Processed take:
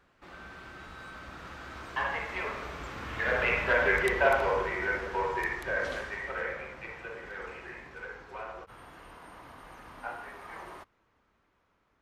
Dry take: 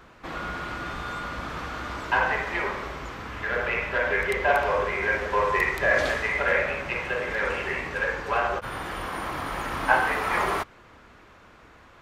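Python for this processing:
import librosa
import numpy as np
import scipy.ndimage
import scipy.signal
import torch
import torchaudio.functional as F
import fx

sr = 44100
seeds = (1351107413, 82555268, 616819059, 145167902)

y = fx.doppler_pass(x, sr, speed_mps=26, closest_m=18.0, pass_at_s=3.69)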